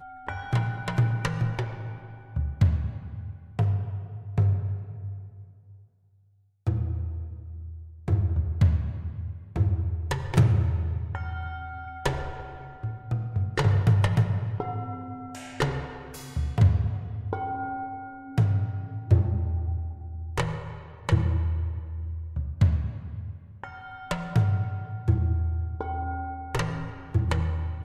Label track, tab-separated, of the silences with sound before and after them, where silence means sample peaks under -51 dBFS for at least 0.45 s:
5.850000	6.670000	silence